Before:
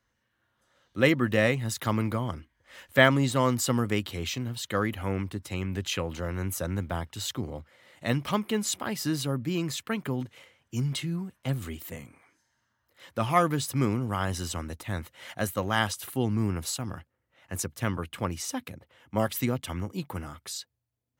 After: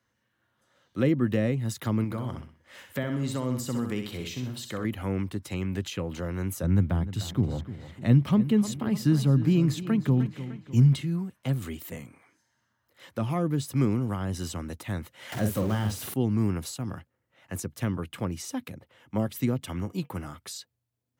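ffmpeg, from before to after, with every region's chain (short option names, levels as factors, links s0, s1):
-filter_complex "[0:a]asettb=1/sr,asplit=3[s0][s1][s2];[s0]atrim=end=2.044[s3];[s1]atrim=start=2.04:end=4.85,asetpts=PTS-STARTPTS,afade=t=in:d=0.004:c=qsin,afade=t=out:st=2.806:d=0.004:c=qsin,acompressor=threshold=0.0158:ratio=1.5:attack=3.2:release=140:knee=1:detection=peak,aecho=1:1:63|126|189|252:0.447|0.152|0.0516|0.0176,atrim=end_sample=123921[s4];[s2]atrim=start=4.846[s5];[s3][s4]acrossfade=d=0.004:c1=hsin:c2=qsin[s6];[s6][s5]acrossfade=d=0.004:c1=qsin:c2=hsin,asettb=1/sr,asplit=3[s7][s8][s9];[s7]atrim=end=6.634[s10];[s8]atrim=start=6.63:end=11.01,asetpts=PTS-STARTPTS,afade=t=in:d=0.004:c=qsin,afade=t=out:st=4.376:d=0.004:c=qsin,bass=f=250:g=9,treble=f=4000:g=-3,asplit=2[s11][s12];[s12]adelay=302,lowpass=f=4900:p=1,volume=0.2,asplit=2[s13][s14];[s14]adelay=302,lowpass=f=4900:p=1,volume=0.49,asplit=2[s15][s16];[s16]adelay=302,lowpass=f=4900:p=1,volume=0.49,asplit=2[s17][s18];[s18]adelay=302,lowpass=f=4900:p=1,volume=0.49,asplit=2[s19][s20];[s20]adelay=302,lowpass=f=4900:p=1,volume=0.49[s21];[s11][s13][s15][s17][s19][s21]amix=inputs=6:normalize=0,atrim=end_sample=193158[s22];[s9]atrim=start=11.006[s23];[s10][s22]acrossfade=d=0.004:c1=hsin:c2=qsin[s24];[s24][s23]acrossfade=d=0.004:c1=qsin:c2=hsin,asettb=1/sr,asplit=3[s25][s26][s27];[s25]atrim=end=15.324[s28];[s26]atrim=start=15.32:end=16.14,asetpts=PTS-STARTPTS,afade=t=in:d=0.004:c=qsin,afade=t=out:st=0.816:d=0.004:c=qsin,aeval=exprs='val(0)+0.5*0.0398*sgn(val(0))':c=same,asplit=2[s29][s30];[s30]adelay=47,volume=0.501[s31];[s29][s31]amix=inputs=2:normalize=0,atrim=end_sample=36162[s32];[s27]atrim=start=16.136[s33];[s28][s32]acrossfade=d=0.004:c1=hsin:c2=qsin[s34];[s34][s33]acrossfade=d=0.004:c1=qsin:c2=hsin,asettb=1/sr,asplit=3[s35][s36][s37];[s35]atrim=end=19.624[s38];[s36]atrim=start=19.62:end=20.27,asetpts=PTS-STARTPTS,afade=t=in:d=0.004:c=qsin,afade=t=out:st=0.646:d=0.004:c=qsin,bandreject=f=239.3:t=h:w=4,bandreject=f=478.6:t=h:w=4,bandreject=f=717.9:t=h:w=4,bandreject=f=957.2:t=h:w=4,bandreject=f=1196.5:t=h:w=4,bandreject=f=1435.8:t=h:w=4,bandreject=f=1675.1:t=h:w=4,bandreject=f=1914.4:t=h:w=4,bandreject=f=2153.7:t=h:w=4,bandreject=f=2393:t=h:w=4,bandreject=f=2632.3:t=h:w=4,bandreject=f=2871.6:t=h:w=4,bandreject=f=3110.9:t=h:w=4,agate=range=0.0224:threshold=0.00891:ratio=3:release=100:detection=peak,acompressor=mode=upward:threshold=0.0178:ratio=2.5:attack=3.2:release=140:knee=2.83:detection=peak[s39];[s37]atrim=start=20.266[s40];[s38][s39]acrossfade=d=0.004:c1=hsin:c2=qsin[s41];[s41][s40]acrossfade=d=0.004:c1=qsin:c2=hsin,highpass=100,lowshelf=f=330:g=4,acrossover=split=460[s42][s43];[s43]acompressor=threshold=0.0158:ratio=5[s44];[s42][s44]amix=inputs=2:normalize=0"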